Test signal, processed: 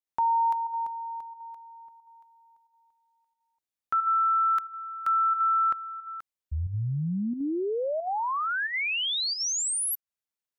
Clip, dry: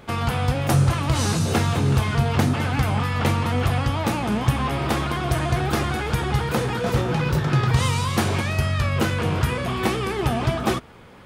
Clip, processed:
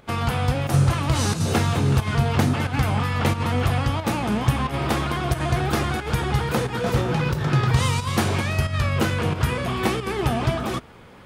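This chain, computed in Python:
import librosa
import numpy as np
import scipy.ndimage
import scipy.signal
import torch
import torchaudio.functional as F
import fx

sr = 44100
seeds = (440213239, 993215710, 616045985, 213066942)

y = fx.volume_shaper(x, sr, bpm=90, per_beat=1, depth_db=-8, release_ms=68.0, shape='slow start')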